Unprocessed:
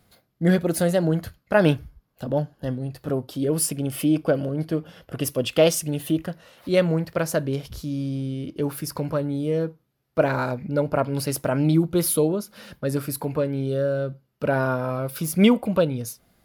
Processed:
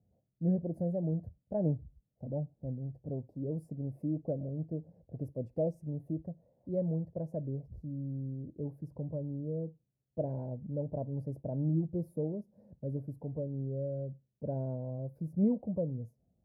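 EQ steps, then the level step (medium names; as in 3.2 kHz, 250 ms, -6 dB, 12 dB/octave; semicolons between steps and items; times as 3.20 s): high-pass 61 Hz; inverse Chebyshev low-pass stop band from 1.2 kHz, stop band 40 dB; peaking EQ 370 Hz -10 dB 1.6 oct; -6.0 dB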